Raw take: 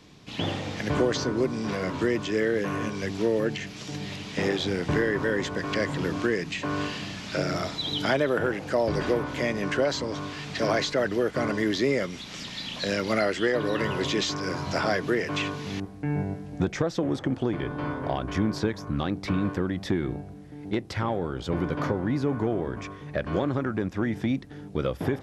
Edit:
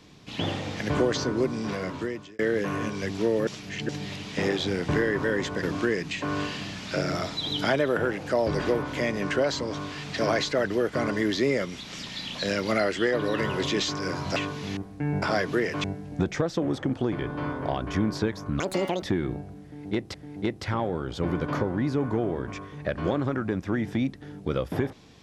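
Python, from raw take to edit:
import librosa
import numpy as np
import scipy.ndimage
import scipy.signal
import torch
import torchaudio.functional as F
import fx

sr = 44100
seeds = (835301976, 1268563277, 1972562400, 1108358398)

y = fx.edit(x, sr, fx.fade_out_span(start_s=1.39, length_s=1.0, curve='qsin'),
    fx.reverse_span(start_s=3.47, length_s=0.42),
    fx.cut(start_s=5.63, length_s=0.41),
    fx.move(start_s=14.77, length_s=0.62, to_s=16.25),
    fx.speed_span(start_s=19.01, length_s=0.81, speed=1.92),
    fx.repeat(start_s=20.43, length_s=0.51, count=2), tone=tone)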